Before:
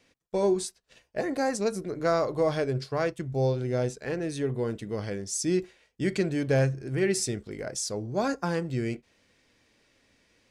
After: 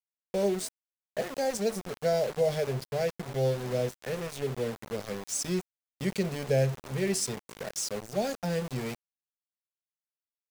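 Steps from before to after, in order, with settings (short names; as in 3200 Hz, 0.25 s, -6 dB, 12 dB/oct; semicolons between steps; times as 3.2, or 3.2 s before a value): fixed phaser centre 310 Hz, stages 6; frequency-shifting echo 0.264 s, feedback 43%, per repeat +69 Hz, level -23 dB; sample gate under -35 dBFS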